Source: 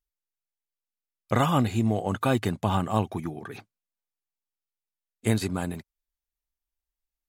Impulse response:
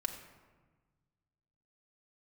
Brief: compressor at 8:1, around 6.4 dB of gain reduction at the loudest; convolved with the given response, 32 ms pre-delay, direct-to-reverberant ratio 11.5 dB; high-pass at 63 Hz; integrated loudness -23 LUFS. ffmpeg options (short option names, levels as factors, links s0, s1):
-filter_complex "[0:a]highpass=63,acompressor=threshold=0.0631:ratio=8,asplit=2[s0][s1];[1:a]atrim=start_sample=2205,adelay=32[s2];[s1][s2]afir=irnorm=-1:irlink=0,volume=0.237[s3];[s0][s3]amix=inputs=2:normalize=0,volume=2.66"